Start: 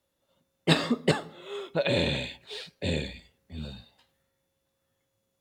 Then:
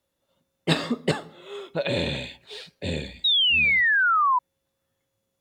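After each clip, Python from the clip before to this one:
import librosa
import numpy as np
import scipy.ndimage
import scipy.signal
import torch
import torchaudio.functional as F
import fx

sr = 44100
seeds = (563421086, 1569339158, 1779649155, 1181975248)

y = fx.spec_paint(x, sr, seeds[0], shape='fall', start_s=3.24, length_s=1.15, low_hz=970.0, high_hz=3900.0, level_db=-20.0)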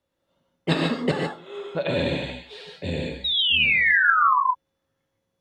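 y = fx.lowpass(x, sr, hz=3000.0, slope=6)
y = fx.rev_gated(y, sr, seeds[1], gate_ms=170, shape='rising', drr_db=0.5)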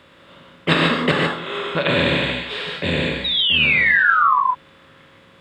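y = fx.bin_compress(x, sr, power=0.6)
y = F.gain(torch.from_numpy(y), 1.5).numpy()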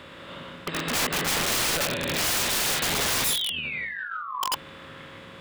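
y = fx.over_compress(x, sr, threshold_db=-23.0, ratio=-0.5)
y = (np.mod(10.0 ** (20.0 / 20.0) * y + 1.0, 2.0) - 1.0) / 10.0 ** (20.0 / 20.0)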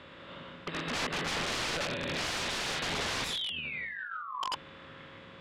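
y = scipy.signal.sosfilt(scipy.signal.butter(2, 5000.0, 'lowpass', fs=sr, output='sos'), x)
y = F.gain(torch.from_numpy(y), -6.0).numpy()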